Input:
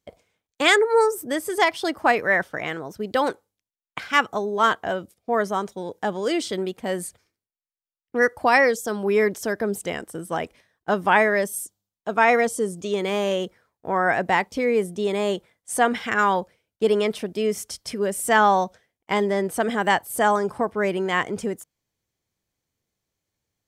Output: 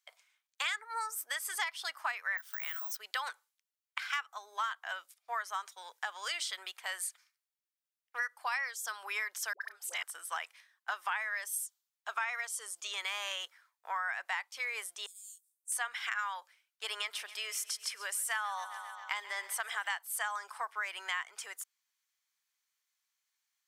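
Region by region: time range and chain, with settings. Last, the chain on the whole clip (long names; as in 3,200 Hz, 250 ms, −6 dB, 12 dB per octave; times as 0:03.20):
0:02.37–0:02.97: high-shelf EQ 3,100 Hz +12 dB + downward compressor, threshold −33 dBFS + bad sample-rate conversion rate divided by 2×, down filtered, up zero stuff
0:09.53–0:10.03: volume swells 284 ms + double-tracking delay 32 ms −13 dB + all-pass dispersion highs, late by 81 ms, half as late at 630 Hz
0:15.06–0:15.72: inverse Chebyshev high-pass filter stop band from 1,500 Hz, stop band 80 dB + double-tracking delay 18 ms −2.5 dB
0:16.87–0:19.99: repeating echo 134 ms, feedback 60%, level −18 dB + upward compression, threshold −32 dBFS
whole clip: high-pass filter 1,100 Hz 24 dB per octave; downward compressor 6 to 1, threshold −33 dBFS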